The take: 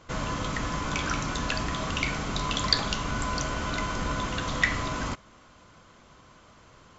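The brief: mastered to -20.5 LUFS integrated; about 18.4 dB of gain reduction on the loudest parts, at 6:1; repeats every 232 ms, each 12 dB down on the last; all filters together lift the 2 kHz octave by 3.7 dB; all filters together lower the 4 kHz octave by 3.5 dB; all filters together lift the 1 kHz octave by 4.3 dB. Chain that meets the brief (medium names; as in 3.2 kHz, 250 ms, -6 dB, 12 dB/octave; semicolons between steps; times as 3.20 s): peaking EQ 1 kHz +4 dB; peaking EQ 2 kHz +4.5 dB; peaking EQ 4 kHz -6 dB; compression 6:1, threshold -36 dBFS; feedback delay 232 ms, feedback 25%, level -12 dB; trim +18 dB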